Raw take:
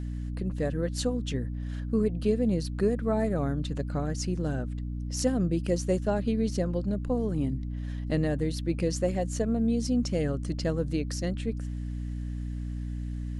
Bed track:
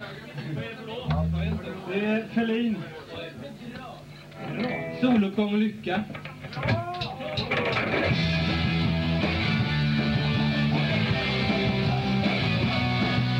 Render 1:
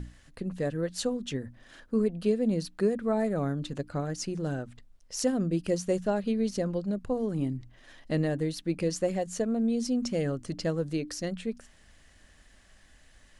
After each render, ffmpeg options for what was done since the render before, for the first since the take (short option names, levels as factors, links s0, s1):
-af "bandreject=f=60:t=h:w=6,bandreject=f=120:t=h:w=6,bandreject=f=180:t=h:w=6,bandreject=f=240:t=h:w=6,bandreject=f=300:t=h:w=6"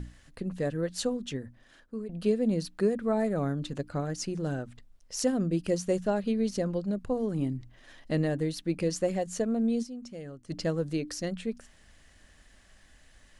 -filter_complex "[0:a]asplit=4[s0][s1][s2][s3];[s0]atrim=end=2.09,asetpts=PTS-STARTPTS,afade=t=out:st=1.1:d=0.99:silence=0.211349[s4];[s1]atrim=start=2.09:end=9.95,asetpts=PTS-STARTPTS,afade=t=in:d=0.004:c=hsin:silence=0.211349,afade=t=out:st=7.73:d=0.13:c=exp:silence=0.237137[s5];[s2]atrim=start=9.95:end=10.38,asetpts=PTS-STARTPTS,volume=0.237[s6];[s3]atrim=start=10.38,asetpts=PTS-STARTPTS,afade=t=in:d=0.13:c=exp:silence=0.237137[s7];[s4][s5][s6][s7]concat=n=4:v=0:a=1"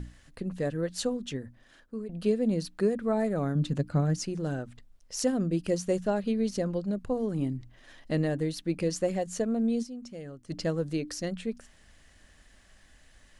-filter_complex "[0:a]asettb=1/sr,asplit=3[s0][s1][s2];[s0]atrim=end=3.554[s3];[s1]atrim=start=3.55:end=4.19,asetpts=PTS-STARTPTS,afade=t=in:d=0.004:c=qsin,afade=t=out:st=0.636:d=0.004:c=qsin,equalizer=f=160:w=1.1:g=9[s4];[s2]atrim=start=4.186[s5];[s3][s4]acrossfade=d=0.004:c1=hsin:c2=qsin[s6];[s6][s5]acrossfade=d=0.004:c1=qsin:c2=hsin"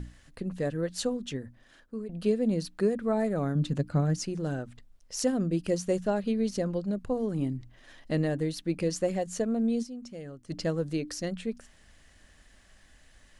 -af anull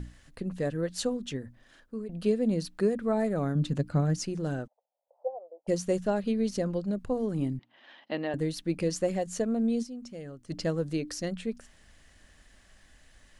-filter_complex "[0:a]asplit=3[s0][s1][s2];[s0]afade=t=out:st=4.66:d=0.02[s3];[s1]asuperpass=centerf=680:order=8:qfactor=1.8,afade=t=in:st=4.66:d=0.02,afade=t=out:st=5.67:d=0.02[s4];[s2]afade=t=in:st=5.67:d=0.02[s5];[s3][s4][s5]amix=inputs=3:normalize=0,asettb=1/sr,asplit=3[s6][s7][s8];[s6]atrim=end=7.594[s9];[s7]atrim=start=7.59:end=8.34,asetpts=PTS-STARTPTS,afade=t=in:d=0.004:c=qsin,afade=t=out:st=0.746:d=0.004:c=qsin,highpass=f=240:w=0.5412,highpass=f=240:w=1.3066,equalizer=f=290:t=q:w=4:g=-4,equalizer=f=440:t=q:w=4:g=-6,equalizer=f=870:t=q:w=4:g=7,equalizer=f=3000:t=q:w=4:g=5,lowpass=f=4100:w=0.5412,lowpass=f=4100:w=1.3066[s10];[s8]atrim=start=8.336[s11];[s9][s10]acrossfade=d=0.004:c1=hsin:c2=qsin[s12];[s12][s11]acrossfade=d=0.004:c1=qsin:c2=hsin"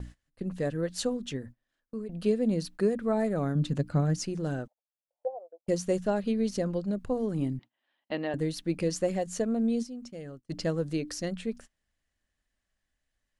-af "agate=range=0.0631:threshold=0.00562:ratio=16:detection=peak"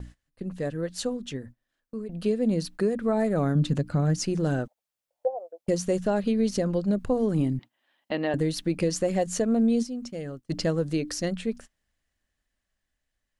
-af "dynaudnorm=f=620:g=9:m=2.24,alimiter=limit=0.168:level=0:latency=1:release=195"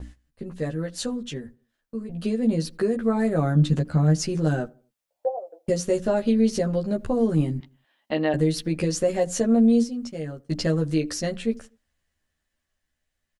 -filter_complex "[0:a]asplit=2[s0][s1];[s1]adelay=13,volume=0.794[s2];[s0][s2]amix=inputs=2:normalize=0,asplit=2[s3][s4];[s4]adelay=81,lowpass=f=1100:p=1,volume=0.0708,asplit=2[s5][s6];[s6]adelay=81,lowpass=f=1100:p=1,volume=0.41,asplit=2[s7][s8];[s8]adelay=81,lowpass=f=1100:p=1,volume=0.41[s9];[s3][s5][s7][s9]amix=inputs=4:normalize=0"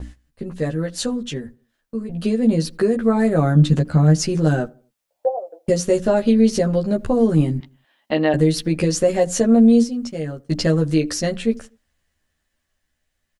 -af "volume=1.88"